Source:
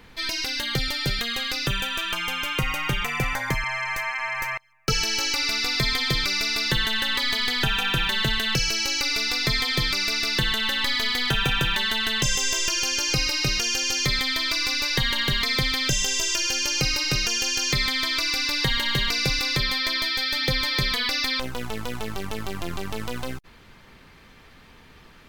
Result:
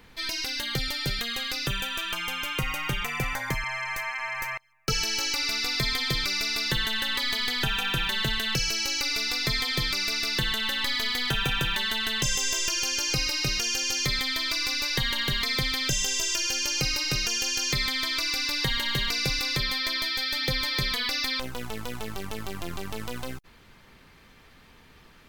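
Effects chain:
high-shelf EQ 7,600 Hz +4.5 dB
level −4 dB

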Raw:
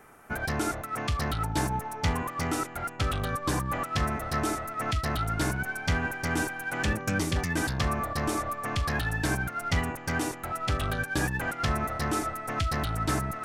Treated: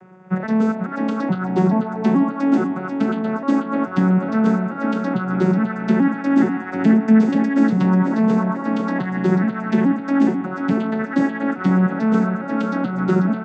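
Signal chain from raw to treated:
vocoder with an arpeggio as carrier minor triad, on F#3, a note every 428 ms
spectral tilt −2.5 dB per octave
repeating echo 490 ms, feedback 39%, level −7 dB
level +8 dB

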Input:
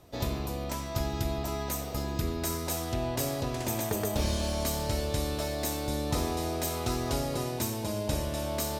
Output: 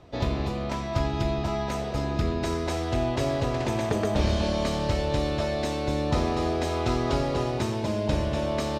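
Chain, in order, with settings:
low-pass filter 3,800 Hz 12 dB per octave
on a send: single-tap delay 240 ms −8 dB
on the sum: level +5 dB

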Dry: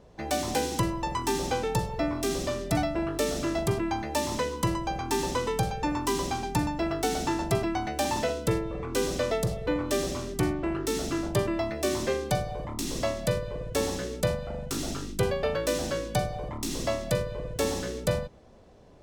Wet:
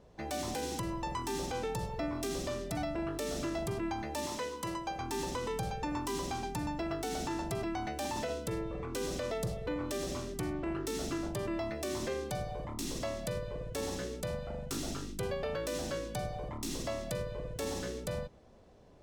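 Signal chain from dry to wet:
0:04.26–0:04.99: low-shelf EQ 190 Hz −12 dB
brickwall limiter −22 dBFS, peak gain reduction 8 dB
level −5 dB

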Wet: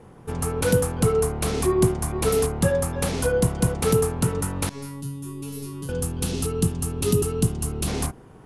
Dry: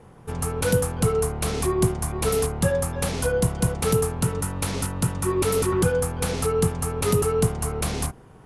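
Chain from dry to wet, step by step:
parametric band 300 Hz +4 dB 1.1 octaves
0:04.69–0:05.89: tuned comb filter 140 Hz, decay 0.39 s, harmonics all, mix 100%
0:05.01–0:07.88: gain on a spectral selection 420–2,500 Hz −9 dB

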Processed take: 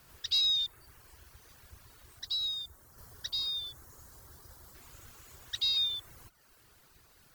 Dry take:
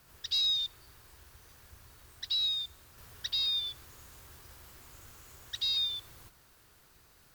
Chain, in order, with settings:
reverb reduction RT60 0.8 s
0:02.19–0:04.75: parametric band 2,600 Hz −13 dB 0.79 octaves
level +2 dB

